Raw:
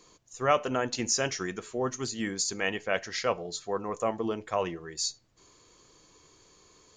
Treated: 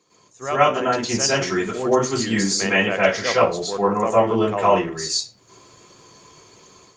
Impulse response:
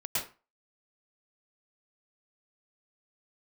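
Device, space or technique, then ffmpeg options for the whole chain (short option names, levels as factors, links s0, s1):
far-field microphone of a smart speaker: -filter_complex "[1:a]atrim=start_sample=2205[s0];[0:a][s0]afir=irnorm=-1:irlink=0,highpass=97,dynaudnorm=f=380:g=3:m=2.51" -ar 48000 -c:a libopus -b:a 32k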